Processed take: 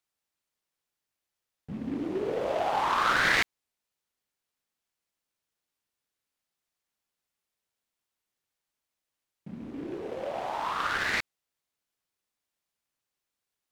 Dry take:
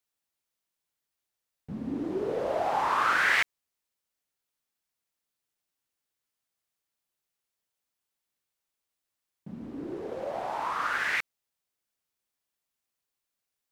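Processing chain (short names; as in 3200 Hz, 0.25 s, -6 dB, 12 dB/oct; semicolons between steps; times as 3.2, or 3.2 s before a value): noise-modulated delay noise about 1800 Hz, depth 0.033 ms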